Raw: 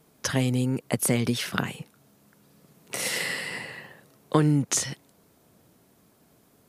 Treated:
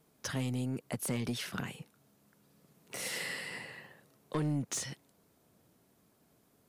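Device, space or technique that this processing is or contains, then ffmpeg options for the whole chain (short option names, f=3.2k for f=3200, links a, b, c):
saturation between pre-emphasis and de-emphasis: -af "highshelf=f=7.6k:g=9,asoftclip=type=tanh:threshold=-18.5dB,highshelf=f=7.6k:g=-9,volume=-8dB"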